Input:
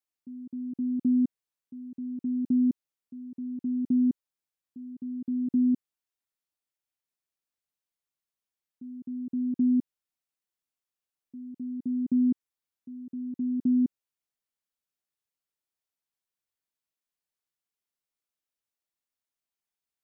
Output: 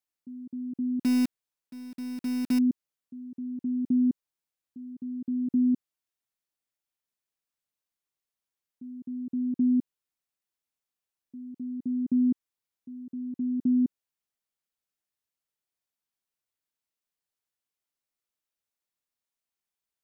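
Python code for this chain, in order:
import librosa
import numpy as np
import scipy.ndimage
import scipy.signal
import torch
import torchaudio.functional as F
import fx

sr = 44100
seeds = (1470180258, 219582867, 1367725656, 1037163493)

y = fx.block_float(x, sr, bits=3, at=(1.03, 2.6))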